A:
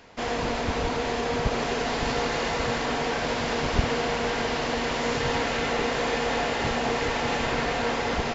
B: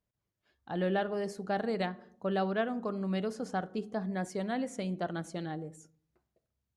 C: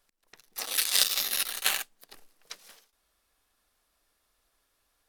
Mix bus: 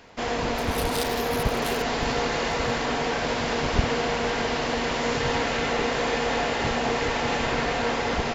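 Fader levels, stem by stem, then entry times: +1.0, -17.0, -10.0 dB; 0.00, 0.00, 0.00 s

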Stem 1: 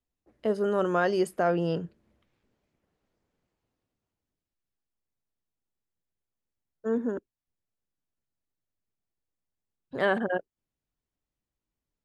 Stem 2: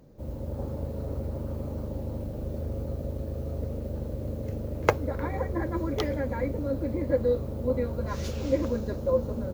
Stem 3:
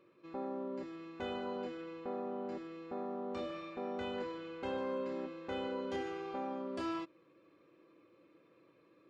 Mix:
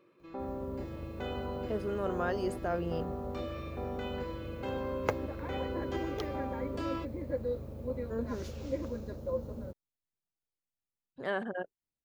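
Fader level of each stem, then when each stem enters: -8.5, -9.5, +1.0 dB; 1.25, 0.20, 0.00 s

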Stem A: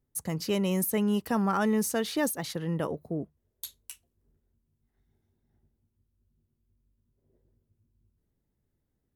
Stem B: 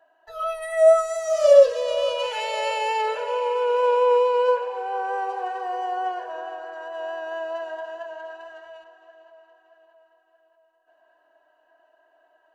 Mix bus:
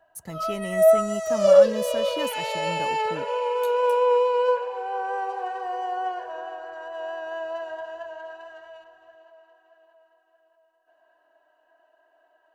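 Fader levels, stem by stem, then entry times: -5.5, -1.5 dB; 0.00, 0.00 s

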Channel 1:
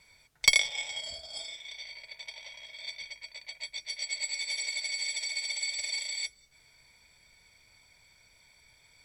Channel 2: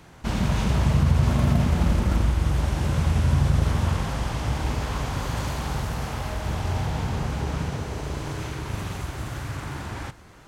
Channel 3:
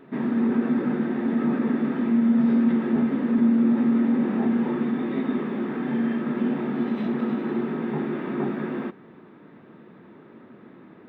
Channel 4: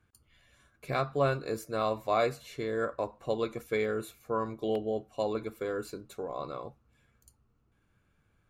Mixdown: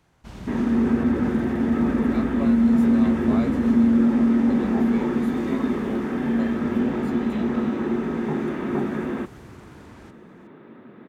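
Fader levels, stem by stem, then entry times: off, -14.5 dB, +2.0 dB, -7.5 dB; off, 0.00 s, 0.35 s, 1.20 s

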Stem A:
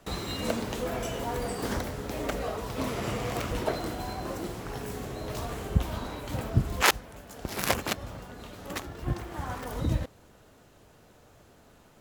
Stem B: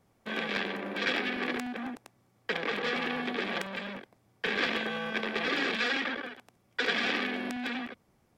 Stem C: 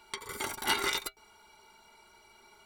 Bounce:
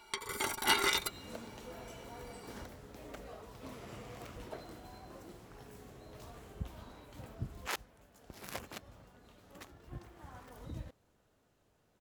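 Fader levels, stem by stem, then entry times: -16.5 dB, off, +0.5 dB; 0.85 s, off, 0.00 s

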